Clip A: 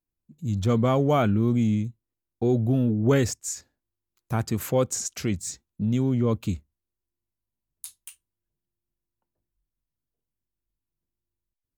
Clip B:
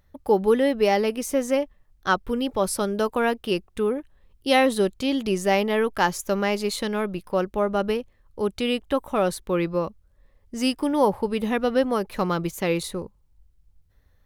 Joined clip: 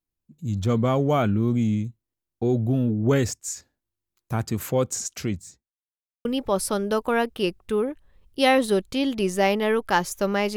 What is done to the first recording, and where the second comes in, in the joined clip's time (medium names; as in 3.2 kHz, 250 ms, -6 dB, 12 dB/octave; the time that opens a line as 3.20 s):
clip A
5.19–5.78 s: studio fade out
5.78–6.25 s: mute
6.25 s: go over to clip B from 2.33 s